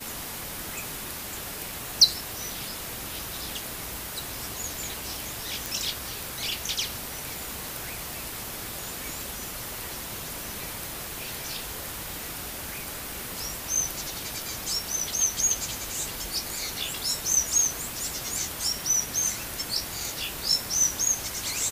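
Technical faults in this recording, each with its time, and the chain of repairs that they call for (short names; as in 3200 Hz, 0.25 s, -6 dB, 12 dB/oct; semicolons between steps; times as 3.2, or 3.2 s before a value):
5.66 pop
8.13 pop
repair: de-click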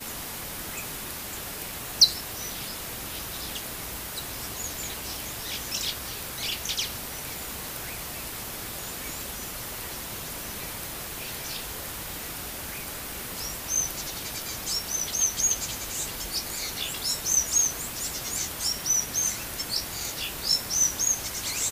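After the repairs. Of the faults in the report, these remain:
none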